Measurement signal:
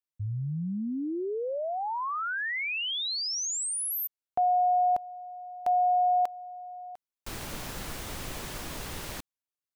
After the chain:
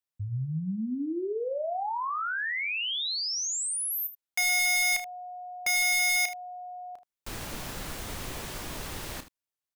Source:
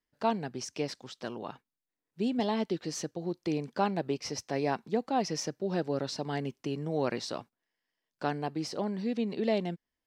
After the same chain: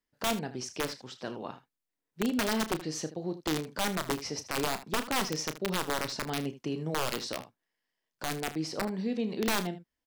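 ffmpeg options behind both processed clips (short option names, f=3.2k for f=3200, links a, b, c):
-af "aeval=exprs='(mod(12.6*val(0)+1,2)-1)/12.6':c=same,aecho=1:1:32|78:0.282|0.188"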